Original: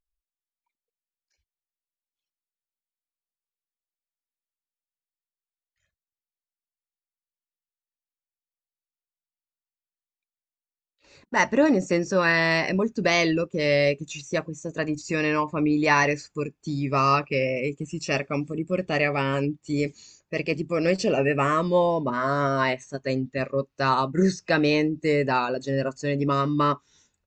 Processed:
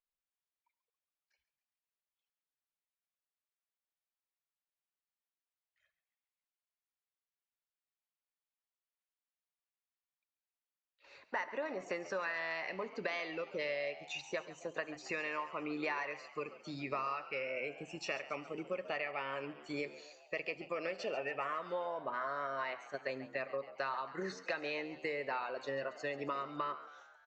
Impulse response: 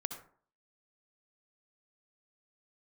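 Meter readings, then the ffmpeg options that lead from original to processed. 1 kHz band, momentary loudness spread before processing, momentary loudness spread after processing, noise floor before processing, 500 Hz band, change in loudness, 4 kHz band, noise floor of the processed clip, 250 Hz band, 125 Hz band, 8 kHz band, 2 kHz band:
−14.5 dB, 9 LU, 5 LU, below −85 dBFS, −15.0 dB, −15.5 dB, −15.0 dB, below −85 dBFS, −21.5 dB, −26.5 dB, −18.5 dB, −13.5 dB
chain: -filter_complex "[0:a]acrossover=split=500 3900:gain=0.1 1 0.112[link_01][link_02][link_03];[link_01][link_02][link_03]amix=inputs=3:normalize=0,acompressor=threshold=-35dB:ratio=10,asplit=7[link_04][link_05][link_06][link_07][link_08][link_09][link_10];[link_05]adelay=138,afreqshift=78,volume=-15.5dB[link_11];[link_06]adelay=276,afreqshift=156,volume=-19.9dB[link_12];[link_07]adelay=414,afreqshift=234,volume=-24.4dB[link_13];[link_08]adelay=552,afreqshift=312,volume=-28.8dB[link_14];[link_09]adelay=690,afreqshift=390,volume=-33.2dB[link_15];[link_10]adelay=828,afreqshift=468,volume=-37.7dB[link_16];[link_04][link_11][link_12][link_13][link_14][link_15][link_16]amix=inputs=7:normalize=0,asplit=2[link_17][link_18];[1:a]atrim=start_sample=2205[link_19];[link_18][link_19]afir=irnorm=-1:irlink=0,volume=-10dB[link_20];[link_17][link_20]amix=inputs=2:normalize=0,volume=-2.5dB"

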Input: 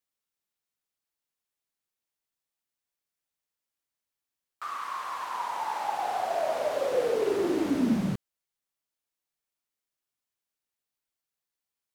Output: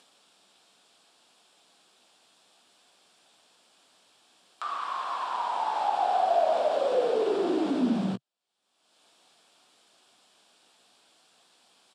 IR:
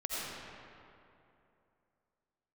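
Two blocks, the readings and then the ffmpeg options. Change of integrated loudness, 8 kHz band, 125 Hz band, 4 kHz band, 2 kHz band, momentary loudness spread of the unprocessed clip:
+2.0 dB, can't be measured, −2.5 dB, +2.5 dB, −1.5 dB, 8 LU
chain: -filter_complex "[0:a]asplit=2[link_01][link_02];[link_02]alimiter=level_in=0.5dB:limit=-24dB:level=0:latency=1:release=78,volume=-0.5dB,volume=-1dB[link_03];[link_01][link_03]amix=inputs=2:normalize=0,asplit=2[link_04][link_05];[link_05]adelay=16,volume=-11dB[link_06];[link_04][link_06]amix=inputs=2:normalize=0,acompressor=mode=upward:threshold=-31dB:ratio=2.5,highpass=frequency=140:width=0.5412,highpass=frequency=140:width=1.3066,equalizer=frequency=140:width_type=q:width=4:gain=-9,equalizer=frequency=710:width_type=q:width=4:gain=6,equalizer=frequency=2000:width_type=q:width=4:gain=-9,equalizer=frequency=3400:width_type=q:width=4:gain=4,equalizer=frequency=6300:width_type=q:width=4:gain=-9,lowpass=frequency=8000:width=0.5412,lowpass=frequency=8000:width=1.3066,volume=-3.5dB"

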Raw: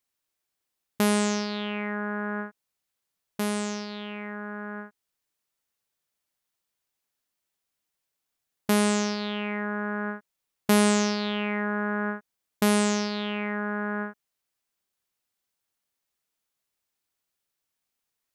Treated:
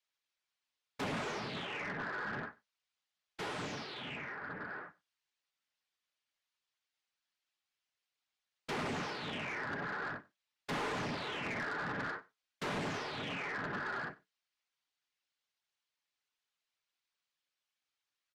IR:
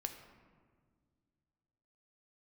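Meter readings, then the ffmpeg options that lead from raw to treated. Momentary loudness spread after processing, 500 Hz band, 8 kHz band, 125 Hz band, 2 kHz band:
9 LU, −13.5 dB, −20.5 dB, −11.0 dB, −7.0 dB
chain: -filter_complex "[0:a]lowpass=3900,tiltshelf=frequency=680:gain=-7,acrossover=split=120|2400[link_01][link_02][link_03];[link_02]flanger=delay=16.5:depth=3.2:speed=2.3[link_04];[link_03]acompressor=threshold=-37dB:ratio=12[link_05];[link_01][link_04][link_05]amix=inputs=3:normalize=0,afftfilt=real='hypot(re,im)*cos(2*PI*random(0))':imag='hypot(re,im)*sin(2*PI*random(1))':win_size=512:overlap=0.75,asoftclip=type=tanh:threshold=-35.5dB,flanger=delay=6.8:depth=1.3:regen=-72:speed=1.1:shape=sinusoidal,asplit=2[link_06][link_07];[link_07]aecho=0:1:95:0.0668[link_08];[link_06][link_08]amix=inputs=2:normalize=0,volume=6dB"

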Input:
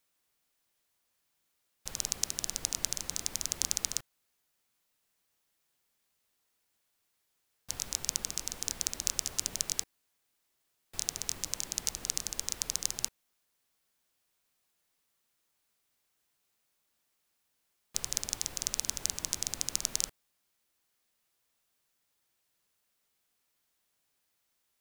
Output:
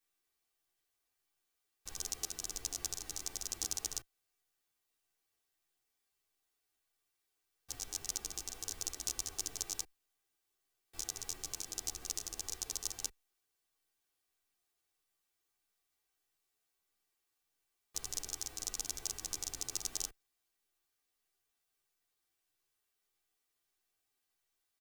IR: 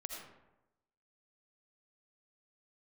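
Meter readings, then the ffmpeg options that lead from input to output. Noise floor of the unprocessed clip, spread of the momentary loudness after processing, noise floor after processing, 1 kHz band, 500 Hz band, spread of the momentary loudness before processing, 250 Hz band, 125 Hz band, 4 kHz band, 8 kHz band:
−79 dBFS, 5 LU, −85 dBFS, −4.5 dB, −4.0 dB, 5 LU, −6.0 dB, −6.5 dB, −7.0 dB, −6.0 dB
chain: -filter_complex "[0:a]aeval=exprs='if(lt(val(0),0),0.708*val(0),val(0))':channel_layout=same,aecho=1:1:2.6:0.53,asplit=2[link_01][link_02];[link_02]adelay=10.4,afreqshift=-1.6[link_03];[link_01][link_03]amix=inputs=2:normalize=1,volume=-3dB"

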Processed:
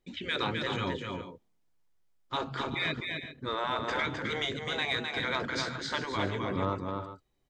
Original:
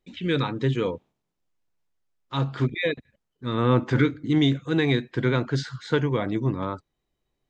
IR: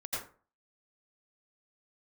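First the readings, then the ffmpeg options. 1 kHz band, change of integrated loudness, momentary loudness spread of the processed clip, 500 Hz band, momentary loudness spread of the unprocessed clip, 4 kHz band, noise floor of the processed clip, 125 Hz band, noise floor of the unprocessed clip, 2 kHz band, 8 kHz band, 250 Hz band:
−0.5 dB, −7.5 dB, 7 LU, −8.5 dB, 10 LU, 0.0 dB, −72 dBFS, −14.0 dB, −80 dBFS, −1.0 dB, can't be measured, −12.5 dB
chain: -af "bandreject=frequency=2700:width=23,afftfilt=real='re*lt(hypot(re,im),0.224)':imag='im*lt(hypot(re,im),0.224)':win_size=1024:overlap=0.75,asoftclip=type=tanh:threshold=-16dB,aecho=1:1:259|373|401:0.596|0.158|0.188"

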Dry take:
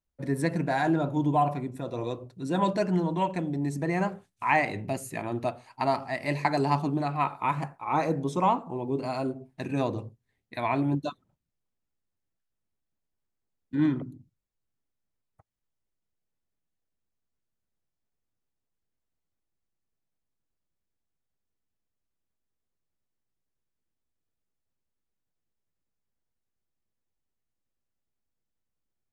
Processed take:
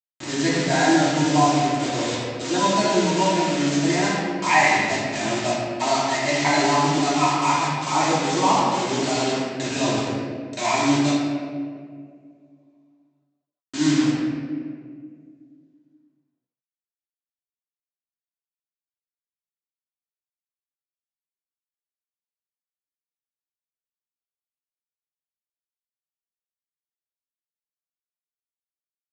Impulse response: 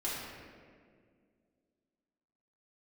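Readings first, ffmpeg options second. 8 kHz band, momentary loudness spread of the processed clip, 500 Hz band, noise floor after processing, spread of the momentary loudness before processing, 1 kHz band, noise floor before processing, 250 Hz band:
can't be measured, 10 LU, +7.0 dB, below −85 dBFS, 9 LU, +7.5 dB, −83 dBFS, +7.5 dB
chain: -filter_complex "[0:a]agate=range=-33dB:threshold=-41dB:ratio=3:detection=peak,aresample=16000,acrusher=bits=5:mix=0:aa=0.000001,aresample=44100,highpass=99,highshelf=frequency=2200:gain=11,asplit=2[link_01][link_02];[link_02]adelay=14,volume=-12dB[link_03];[link_01][link_03]amix=inputs=2:normalize=0[link_04];[1:a]atrim=start_sample=2205[link_05];[link_04][link_05]afir=irnorm=-1:irlink=0"

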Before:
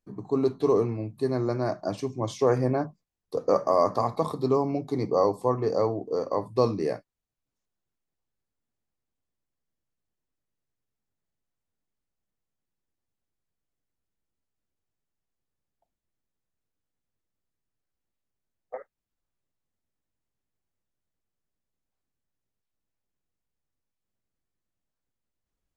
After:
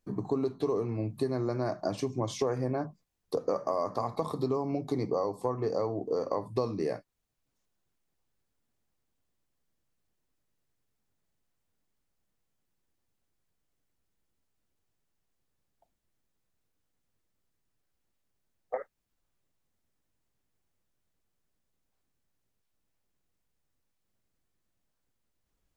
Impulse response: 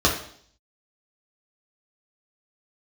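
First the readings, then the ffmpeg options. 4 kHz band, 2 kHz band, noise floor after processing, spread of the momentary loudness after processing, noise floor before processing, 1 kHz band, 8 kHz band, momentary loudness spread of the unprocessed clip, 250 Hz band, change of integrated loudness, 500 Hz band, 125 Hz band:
−3.0 dB, −4.5 dB, −80 dBFS, 6 LU, below −85 dBFS, −6.5 dB, can't be measured, 8 LU, −4.5 dB, −6.0 dB, −6.0 dB, −4.0 dB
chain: -af "acompressor=threshold=-33dB:ratio=6,volume=5.5dB"

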